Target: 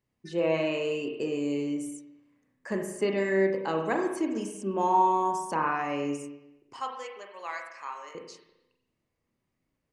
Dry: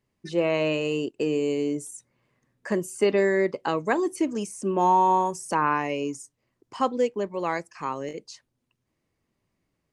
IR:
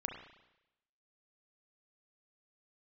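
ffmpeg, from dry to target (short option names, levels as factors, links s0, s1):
-filter_complex "[0:a]asettb=1/sr,asplit=3[s0][s1][s2];[s0]atrim=end=6.784[s3];[s1]atrim=start=6.78:end=8.15,asetpts=PTS-STARTPTS,afade=t=in:d=0.004:c=qsin,afade=t=out:st=1.366:d=0.004:c=qsin,highpass=1000[s4];[s2]atrim=start=8.146[s5];[s3][s4]acrossfade=d=0.004:c1=hsin:c2=qsin[s6];[s6][s5]acrossfade=d=0.004:c1=qsin:c2=hsin[s7];[1:a]atrim=start_sample=2205[s8];[s7][s8]afir=irnorm=-1:irlink=0,volume=0.631"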